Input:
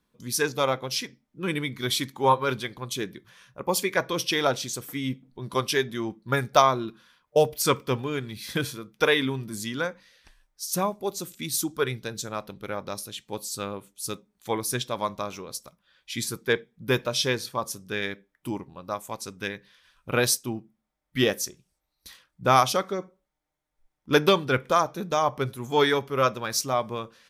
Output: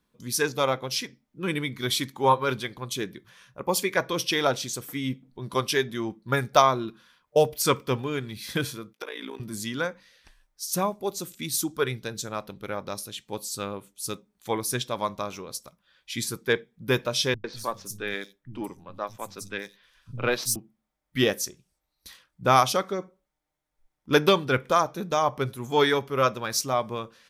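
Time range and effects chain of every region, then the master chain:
0:08.93–0:09.40: high-pass filter 300 Hz 24 dB per octave + amplitude modulation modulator 57 Hz, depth 75% + downward compressor 16 to 1, threshold −31 dBFS
0:17.34–0:20.56: gain on one half-wave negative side −3 dB + three-band delay without the direct sound lows, mids, highs 100/190 ms, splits 170/4,600 Hz
whole clip: no processing

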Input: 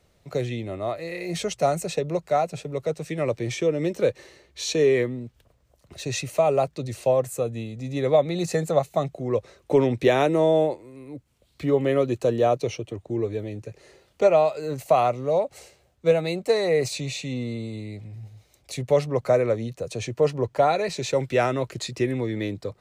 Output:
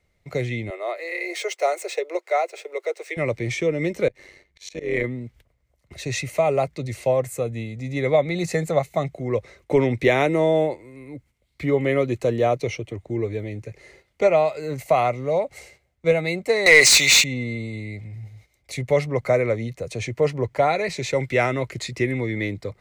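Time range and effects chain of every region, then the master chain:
0:00.70–0:03.17: running median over 3 samples + Butterworth high-pass 350 Hz 72 dB per octave
0:04.08–0:05.04: amplitude modulation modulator 96 Hz, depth 50% + volume swells 170 ms
0:16.66–0:17.24: meter weighting curve ITU-R 468 + leveller curve on the samples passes 3
whole clip: parametric band 2,100 Hz +14 dB 0.23 octaves; noise gate −52 dBFS, range −9 dB; low-shelf EQ 80 Hz +8.5 dB

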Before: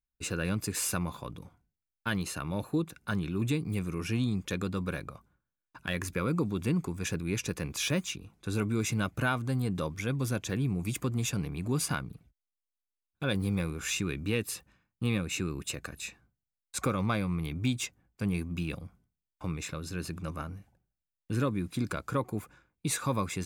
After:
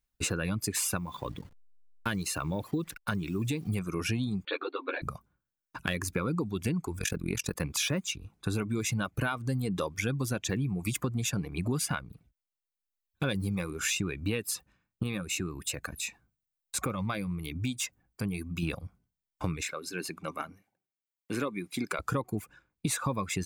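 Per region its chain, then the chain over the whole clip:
0:00.97–0:03.69: hold until the input has moved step −51 dBFS + downward compressor 1.5 to 1, threshold −37 dBFS
0:04.45–0:05.02: linear-phase brick-wall band-pass 260–4,600 Hz + string-ensemble chorus
0:06.99–0:07.61: high-shelf EQ 10,000 Hz +8 dB + amplitude modulation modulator 44 Hz, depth 70%
0:15.03–0:18.63: high-shelf EQ 7,700 Hz +5 dB + downward compressor 1.5 to 1, threshold −47 dBFS
0:19.63–0:21.99: high-pass filter 250 Hz + parametric band 2,200 Hz +8 dB 0.2 octaves + tuned comb filter 390 Hz, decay 0.16 s, mix 40%
whole clip: reverb reduction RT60 1.2 s; downward compressor, threshold −36 dBFS; level +8.5 dB

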